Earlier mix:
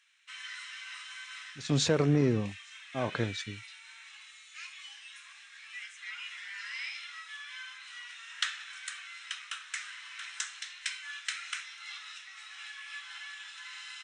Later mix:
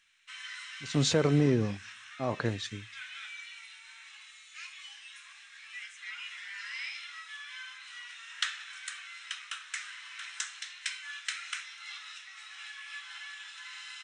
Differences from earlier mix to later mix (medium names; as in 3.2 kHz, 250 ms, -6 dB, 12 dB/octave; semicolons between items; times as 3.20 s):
speech: entry -0.75 s; reverb: on, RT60 0.45 s